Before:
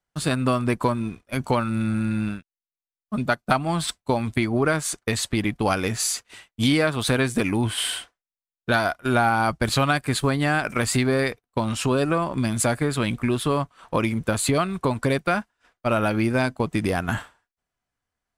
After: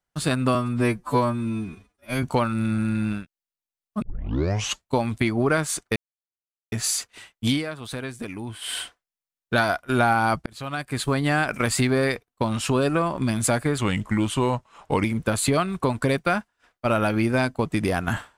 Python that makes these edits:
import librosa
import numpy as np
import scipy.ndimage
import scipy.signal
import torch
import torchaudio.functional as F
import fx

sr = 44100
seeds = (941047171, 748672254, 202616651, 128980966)

y = fx.edit(x, sr, fx.stretch_span(start_s=0.55, length_s=0.84, factor=2.0),
    fx.tape_start(start_s=3.18, length_s=0.86),
    fx.silence(start_s=5.12, length_s=0.76),
    fx.fade_down_up(start_s=6.62, length_s=1.34, db=-11.0, fade_s=0.18),
    fx.fade_in_span(start_s=9.62, length_s=0.77),
    fx.speed_span(start_s=12.94, length_s=1.11, speed=0.88), tone=tone)